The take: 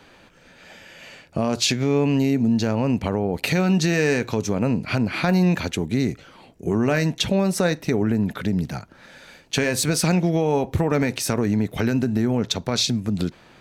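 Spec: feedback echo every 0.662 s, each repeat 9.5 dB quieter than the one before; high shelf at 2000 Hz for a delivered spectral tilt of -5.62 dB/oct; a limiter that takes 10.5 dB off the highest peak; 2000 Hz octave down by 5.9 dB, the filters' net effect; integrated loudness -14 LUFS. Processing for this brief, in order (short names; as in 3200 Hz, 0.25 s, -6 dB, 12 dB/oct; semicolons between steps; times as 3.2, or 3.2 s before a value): high shelf 2000 Hz -5 dB; bell 2000 Hz -4.5 dB; limiter -19.5 dBFS; feedback echo 0.662 s, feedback 33%, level -9.5 dB; gain +14.5 dB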